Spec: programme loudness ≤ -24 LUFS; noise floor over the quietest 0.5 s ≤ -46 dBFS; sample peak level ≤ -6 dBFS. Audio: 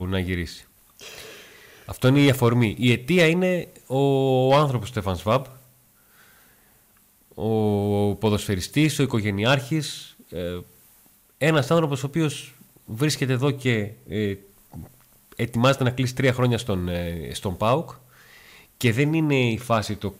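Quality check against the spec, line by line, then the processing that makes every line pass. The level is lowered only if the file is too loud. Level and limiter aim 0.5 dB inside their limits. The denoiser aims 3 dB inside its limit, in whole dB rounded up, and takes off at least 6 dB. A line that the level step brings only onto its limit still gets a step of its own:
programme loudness -22.5 LUFS: fail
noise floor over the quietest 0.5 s -59 dBFS: OK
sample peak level -9.0 dBFS: OK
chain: gain -2 dB

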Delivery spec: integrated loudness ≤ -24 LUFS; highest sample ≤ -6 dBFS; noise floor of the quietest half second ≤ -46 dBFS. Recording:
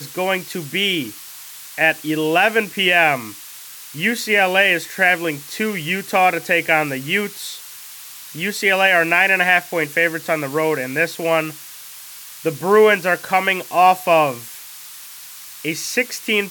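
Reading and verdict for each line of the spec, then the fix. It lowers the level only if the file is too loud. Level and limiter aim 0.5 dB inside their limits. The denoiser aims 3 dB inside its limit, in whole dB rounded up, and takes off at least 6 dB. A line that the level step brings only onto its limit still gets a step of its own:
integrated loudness -17.5 LUFS: fail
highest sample -2.5 dBFS: fail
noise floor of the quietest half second -37 dBFS: fail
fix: denoiser 6 dB, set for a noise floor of -37 dBFS; gain -7 dB

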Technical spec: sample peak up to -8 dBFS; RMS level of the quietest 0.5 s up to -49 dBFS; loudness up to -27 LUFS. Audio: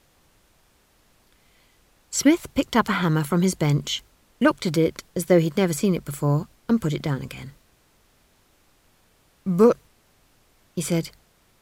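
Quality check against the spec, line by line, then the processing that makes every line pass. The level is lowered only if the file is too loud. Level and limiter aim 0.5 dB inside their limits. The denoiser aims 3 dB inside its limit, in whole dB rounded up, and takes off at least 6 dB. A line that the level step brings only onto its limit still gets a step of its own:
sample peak -6.0 dBFS: fail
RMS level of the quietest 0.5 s -61 dBFS: OK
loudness -23.0 LUFS: fail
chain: gain -4.5 dB

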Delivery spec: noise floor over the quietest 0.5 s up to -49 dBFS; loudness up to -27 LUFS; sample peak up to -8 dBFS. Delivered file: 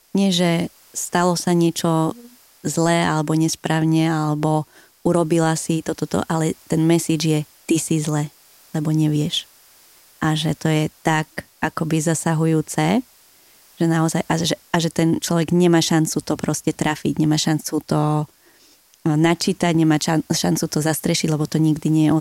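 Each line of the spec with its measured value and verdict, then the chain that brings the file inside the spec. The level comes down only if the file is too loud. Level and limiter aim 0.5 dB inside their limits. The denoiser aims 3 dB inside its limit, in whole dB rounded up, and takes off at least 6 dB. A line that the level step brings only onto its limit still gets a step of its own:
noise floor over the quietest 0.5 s -53 dBFS: OK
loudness -20.0 LUFS: fail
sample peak -5.0 dBFS: fail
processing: gain -7.5 dB

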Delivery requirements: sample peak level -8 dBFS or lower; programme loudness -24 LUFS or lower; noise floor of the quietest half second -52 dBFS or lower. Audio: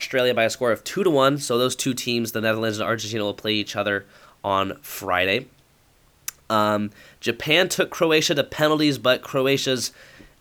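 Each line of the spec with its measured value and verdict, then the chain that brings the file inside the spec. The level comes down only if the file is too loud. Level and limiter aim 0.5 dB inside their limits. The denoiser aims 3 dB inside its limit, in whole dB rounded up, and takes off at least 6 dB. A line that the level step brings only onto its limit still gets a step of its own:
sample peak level -4.0 dBFS: fail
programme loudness -22.0 LUFS: fail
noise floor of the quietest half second -58 dBFS: OK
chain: gain -2.5 dB; limiter -8.5 dBFS

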